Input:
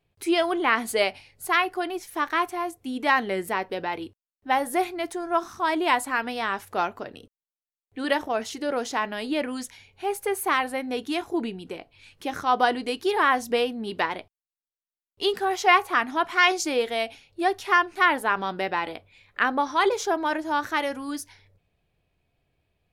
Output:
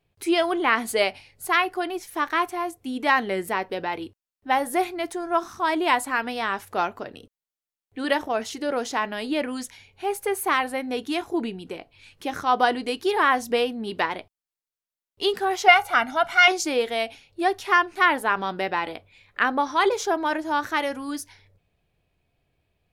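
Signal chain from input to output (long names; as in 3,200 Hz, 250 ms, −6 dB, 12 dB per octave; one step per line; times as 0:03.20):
0:15.68–0:16.48: comb filter 1.4 ms, depth 81%
level +1 dB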